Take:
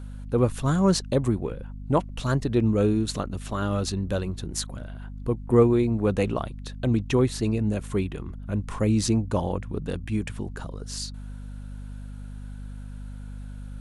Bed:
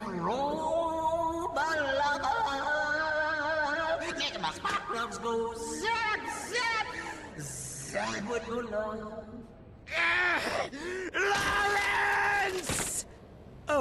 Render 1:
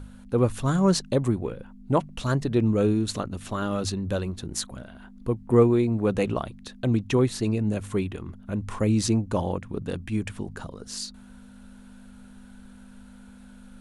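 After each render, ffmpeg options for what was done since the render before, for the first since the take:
ffmpeg -i in.wav -af "bandreject=frequency=50:width_type=h:width=4,bandreject=frequency=100:width_type=h:width=4,bandreject=frequency=150:width_type=h:width=4" out.wav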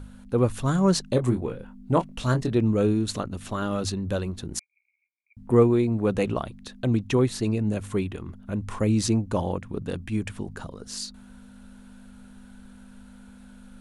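ffmpeg -i in.wav -filter_complex "[0:a]asettb=1/sr,asplit=3[link_01][link_02][link_03];[link_01]atrim=end=1.104[link_04];[link_02]atrim=start=1.1:end=2.55,asetpts=PTS-STARTPTS,afade=type=in:duration=0.004:curve=qsin,afade=type=out:start_time=1.446:duration=0.004:curve=qsin,asplit=2[link_05][link_06];[link_06]adelay=24,volume=-7dB[link_07];[link_05][link_07]amix=inputs=2:normalize=0,atrim=end_sample=63945[link_08];[link_03]atrim=start=2.546[link_09];[link_04][link_08]acrossfade=duration=0.004:curve1=hsin:curve2=qsin[link_10];[link_10][link_09]acrossfade=duration=0.004:curve1=qsin:curve2=hsin,asettb=1/sr,asplit=3[link_11][link_12][link_13];[link_11]atrim=end=4.594[link_14];[link_12]atrim=start=4.59:end=5.37,asetpts=PTS-STARTPTS,afade=type=in:duration=0.004:curve=qsin,afade=type=out:start_time=0.776:duration=0.004:curve=qsin,asuperpass=centerf=2300:order=8:qfactor=7.8[link_15];[link_13]atrim=start=5.366[link_16];[link_14][link_15]acrossfade=duration=0.004:curve1=hsin:curve2=qsin[link_17];[link_17][link_16]acrossfade=duration=0.004:curve1=qsin:curve2=hsin" out.wav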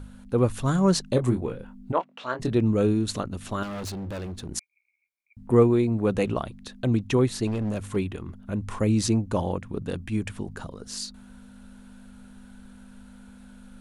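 ffmpeg -i in.wav -filter_complex "[0:a]asplit=3[link_01][link_02][link_03];[link_01]afade=type=out:start_time=1.91:duration=0.02[link_04];[link_02]highpass=520,lowpass=2800,afade=type=in:start_time=1.91:duration=0.02,afade=type=out:start_time=2.39:duration=0.02[link_05];[link_03]afade=type=in:start_time=2.39:duration=0.02[link_06];[link_04][link_05][link_06]amix=inputs=3:normalize=0,asettb=1/sr,asplit=3[link_07][link_08][link_09];[link_07]atrim=end=3.634[link_10];[link_08]atrim=start=3.63:end=4.49,asetpts=PTS-STARTPTS,afade=type=in:duration=0.004:curve=qsin,afade=type=out:start_time=0.856:duration=0.004:curve=qsin,asoftclip=type=hard:threshold=-31.5dB[link_11];[link_09]atrim=start=4.486[link_12];[link_10][link_11]acrossfade=duration=0.004:curve1=hsin:curve2=qsin[link_13];[link_13][link_12]acrossfade=duration=0.004:curve1=qsin:curve2=hsin,asettb=1/sr,asplit=3[link_14][link_15][link_16];[link_14]atrim=end=7.474[link_17];[link_15]atrim=start=7.47:end=7.96,asetpts=PTS-STARTPTS,afade=type=in:duration=0.004:curve=qsin,afade=type=out:start_time=0.486:duration=0.004:curve=qsin,asoftclip=type=hard:threshold=-24dB[link_18];[link_16]atrim=start=7.956[link_19];[link_17][link_18]acrossfade=duration=0.004:curve1=hsin:curve2=qsin[link_20];[link_20][link_19]acrossfade=duration=0.004:curve1=qsin:curve2=hsin" out.wav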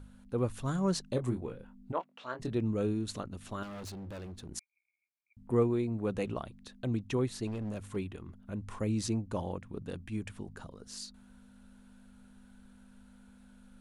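ffmpeg -i in.wav -af "volume=-9.5dB" out.wav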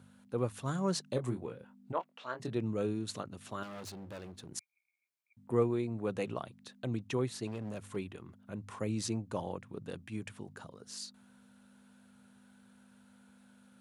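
ffmpeg -i in.wav -af "highpass=frequency=110:width=0.5412,highpass=frequency=110:width=1.3066,equalizer=frequency=230:width=1.1:gain=-4" out.wav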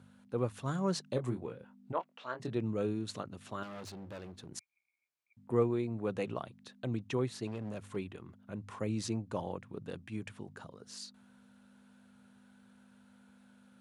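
ffmpeg -i in.wav -af "highshelf=frequency=8100:gain=-8.5" out.wav

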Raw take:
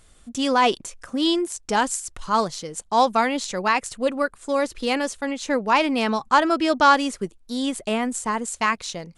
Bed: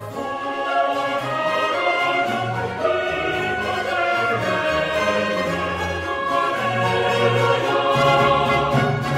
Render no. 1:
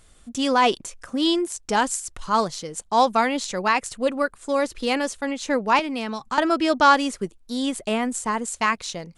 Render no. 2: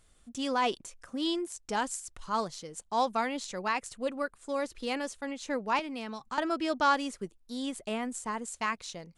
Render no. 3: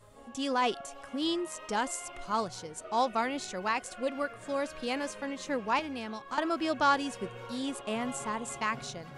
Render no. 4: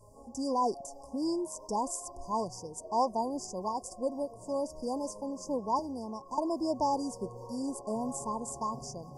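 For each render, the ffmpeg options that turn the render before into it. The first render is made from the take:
ffmpeg -i in.wav -filter_complex "[0:a]asettb=1/sr,asplit=3[link_01][link_02][link_03];[link_01]atrim=end=5.794[link_04];[link_02]atrim=start=5.79:end=6.38,asetpts=PTS-STARTPTS,afade=type=in:duration=0.004:curve=qsin,afade=type=out:start_time=0.586:duration=0.004:curve=qsin,acrossover=split=270|1600[link_05][link_06][link_07];[link_05]acompressor=threshold=-33dB:ratio=4[link_08];[link_06]acompressor=threshold=-31dB:ratio=4[link_09];[link_07]acompressor=threshold=-33dB:ratio=4[link_10];[link_08][link_09][link_10]amix=inputs=3:normalize=0[link_11];[link_03]atrim=start=6.376[link_12];[link_04][link_11]acrossfade=duration=0.004:curve1=hsin:curve2=qsin[link_13];[link_13][link_12]acrossfade=duration=0.004:curve1=qsin:curve2=hsin" out.wav
ffmpeg -i in.wav -af "volume=-10dB" out.wav
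ffmpeg -i in.wav -i bed.wav -filter_complex "[1:a]volume=-26.5dB[link_01];[0:a][link_01]amix=inputs=2:normalize=0" out.wav
ffmpeg -i in.wav -af "afftfilt=real='re*(1-between(b*sr/4096,1100,4600))':imag='im*(1-between(b*sr/4096,1100,4600))':win_size=4096:overlap=0.75,equalizer=frequency=61:width_type=o:width=0.27:gain=13" out.wav

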